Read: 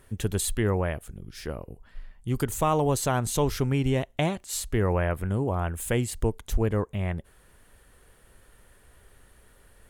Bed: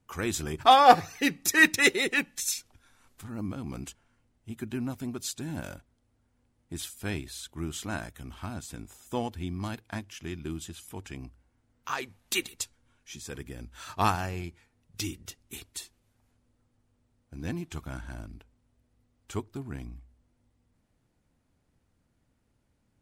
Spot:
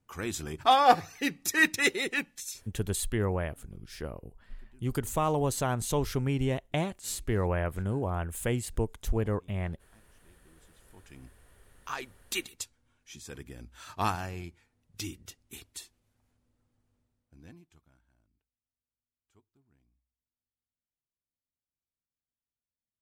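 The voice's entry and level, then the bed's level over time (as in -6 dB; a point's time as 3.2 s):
2.55 s, -4.0 dB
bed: 2.26 s -4 dB
3.19 s -27.5 dB
10.5 s -27.5 dB
11.38 s -4 dB
16.97 s -4 dB
18.06 s -32 dB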